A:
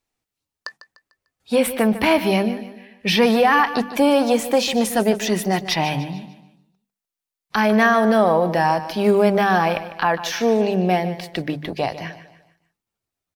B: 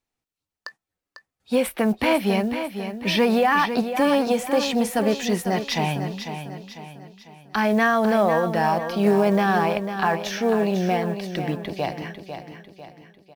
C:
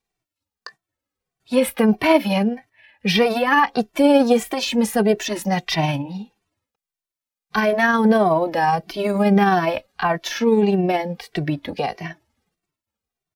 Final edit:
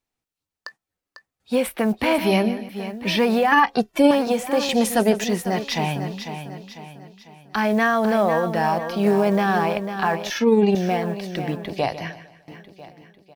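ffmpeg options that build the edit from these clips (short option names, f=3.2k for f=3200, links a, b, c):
-filter_complex "[0:a]asplit=3[a][b][c];[2:a]asplit=2[d][e];[1:a]asplit=6[f][g][h][i][j][k];[f]atrim=end=2.182[l];[a]atrim=start=2.178:end=2.692[m];[g]atrim=start=2.688:end=3.522[n];[d]atrim=start=3.518:end=4.112[o];[h]atrim=start=4.108:end=4.692[p];[b]atrim=start=4.688:end=5.242[q];[i]atrim=start=5.238:end=10.302[r];[e]atrim=start=10.298:end=10.752[s];[j]atrim=start=10.748:end=11.782[t];[c]atrim=start=11.778:end=12.482[u];[k]atrim=start=12.478[v];[l][m]acrossfade=d=0.004:c1=hsin:c2=hsin[w];[w][n]acrossfade=d=0.004:c1=hsin:c2=hsin[x];[x][o]acrossfade=d=0.004:c1=hsin:c2=hsin[y];[y][p]acrossfade=d=0.004:c1=hsin:c2=hsin[z];[z][q]acrossfade=d=0.004:c1=hsin:c2=hsin[aa];[aa][r]acrossfade=d=0.004:c1=hsin:c2=hsin[ab];[ab][s]acrossfade=d=0.004:c1=hsin:c2=hsin[ac];[ac][t]acrossfade=d=0.004:c1=hsin:c2=hsin[ad];[ad][u]acrossfade=d=0.004:c1=hsin:c2=hsin[ae];[ae][v]acrossfade=d=0.004:c1=hsin:c2=hsin"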